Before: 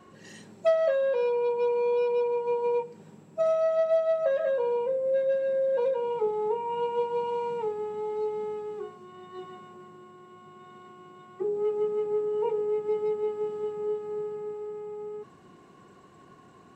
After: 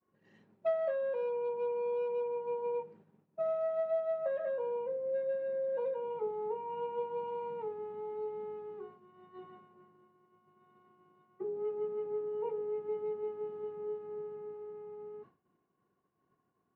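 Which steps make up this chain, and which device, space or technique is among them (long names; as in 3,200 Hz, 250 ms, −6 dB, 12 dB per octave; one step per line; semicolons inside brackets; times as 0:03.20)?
hearing-loss simulation (low-pass filter 2,200 Hz 12 dB per octave; downward expander −42 dBFS)
level −8.5 dB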